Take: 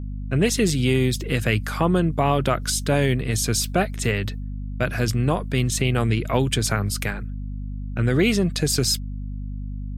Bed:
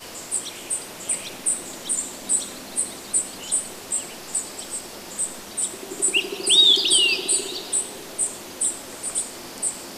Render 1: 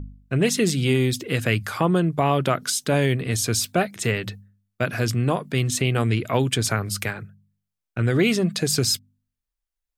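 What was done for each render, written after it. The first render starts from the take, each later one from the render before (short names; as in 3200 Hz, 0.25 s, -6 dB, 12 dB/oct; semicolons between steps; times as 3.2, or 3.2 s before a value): de-hum 50 Hz, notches 5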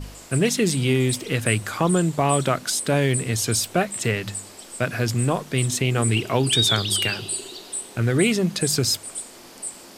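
add bed -7 dB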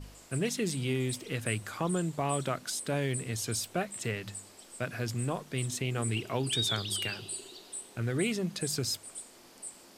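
gain -11 dB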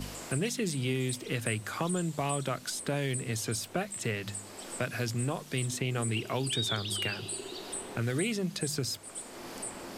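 three-band squash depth 70%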